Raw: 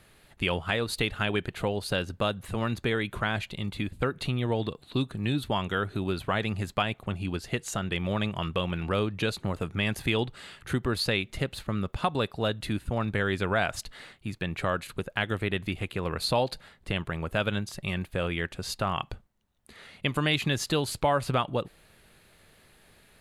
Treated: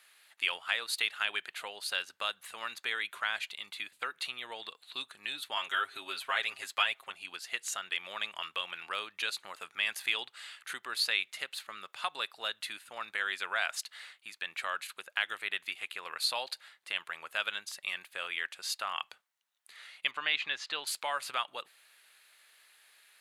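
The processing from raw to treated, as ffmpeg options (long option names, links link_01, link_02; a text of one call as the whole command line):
ffmpeg -i in.wav -filter_complex "[0:a]asettb=1/sr,asplit=3[link_01][link_02][link_03];[link_01]atrim=end=5.564[link_04];[link_02]atrim=start=5.56:end=7.1,asetpts=PTS-STARTPTS,afade=type=in:duration=0.004:curve=qsin,afade=type=out:start_time=1.536:duration=0.004:curve=qsin,aecho=1:1:7.4:0.96,atrim=end_sample=67914[link_05];[link_03]atrim=start=7.096[link_06];[link_04][link_05]acrossfade=duration=0.004:curve1=hsin:curve2=qsin[link_07];[link_07][link_06]acrossfade=duration=0.004:curve1=qsin:curve2=hsin,asettb=1/sr,asplit=3[link_08][link_09][link_10];[link_08]atrim=end=20.114[link_11];[link_09]atrim=start=20.11:end=20.87,asetpts=PTS-STARTPTS,afade=type=in:duration=0.004:curve=qsin,afade=type=out:start_time=0.756:duration=0.004:curve=qsin,lowpass=3300[link_12];[link_10]atrim=start=20.866[link_13];[link_11][link_12]acrossfade=duration=0.004:curve1=hsin:curve2=qsin[link_14];[link_14][link_13]acrossfade=duration=0.004:curve1=qsin:curve2=hsin,highpass=1400" out.wav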